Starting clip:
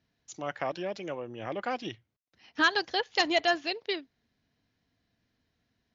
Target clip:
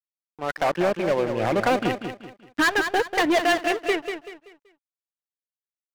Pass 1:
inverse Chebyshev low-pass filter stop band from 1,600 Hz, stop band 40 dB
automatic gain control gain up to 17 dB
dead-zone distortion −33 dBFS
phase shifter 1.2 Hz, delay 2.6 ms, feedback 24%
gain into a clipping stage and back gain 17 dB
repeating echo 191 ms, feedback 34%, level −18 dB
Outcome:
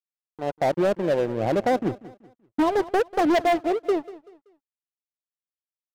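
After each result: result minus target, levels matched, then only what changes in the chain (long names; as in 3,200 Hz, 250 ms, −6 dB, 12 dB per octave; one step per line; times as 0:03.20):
2,000 Hz band −9.0 dB; echo-to-direct −10.5 dB
change: inverse Chebyshev low-pass filter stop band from 4,800 Hz, stop band 40 dB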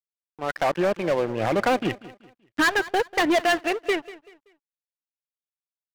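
echo-to-direct −10.5 dB
change: repeating echo 191 ms, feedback 34%, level −7.5 dB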